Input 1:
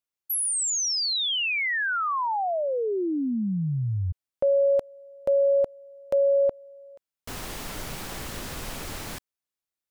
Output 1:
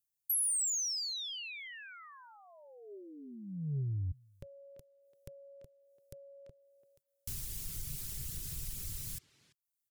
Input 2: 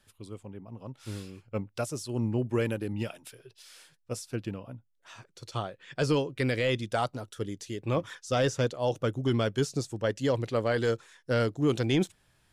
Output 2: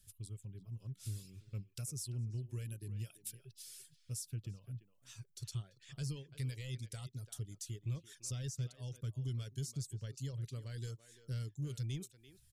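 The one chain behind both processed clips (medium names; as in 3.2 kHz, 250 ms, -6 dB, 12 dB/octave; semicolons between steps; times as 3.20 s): compression 2:1, threshold -41 dBFS; FFT filter 140 Hz 0 dB, 210 Hz -14 dB, 760 Hz -28 dB, 7.3 kHz 0 dB, 12 kHz +4 dB; reverb removal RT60 0.6 s; speakerphone echo 340 ms, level -12 dB; saturation -31.5 dBFS; peaking EQ 400 Hz +6 dB 0.22 oct; trim +3.5 dB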